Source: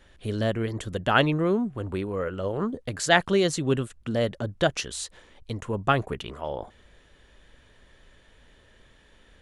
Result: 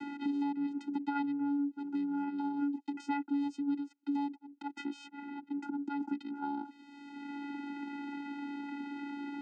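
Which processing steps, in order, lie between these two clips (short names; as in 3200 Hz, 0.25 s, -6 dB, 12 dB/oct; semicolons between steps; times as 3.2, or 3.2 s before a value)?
4.33–6 auto swell 0.272 s; vocoder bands 8, square 284 Hz; three-band squash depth 100%; gain -6.5 dB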